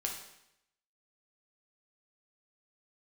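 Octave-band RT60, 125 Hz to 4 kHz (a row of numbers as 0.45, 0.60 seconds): 0.85, 0.85, 0.80, 0.80, 0.80, 0.80 seconds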